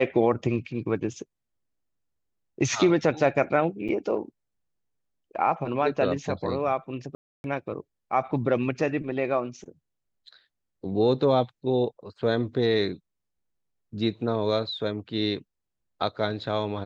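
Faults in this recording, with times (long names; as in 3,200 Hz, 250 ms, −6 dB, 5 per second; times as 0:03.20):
0:03.88–0:03.89: drop-out 6.9 ms
0:07.15–0:07.44: drop-out 291 ms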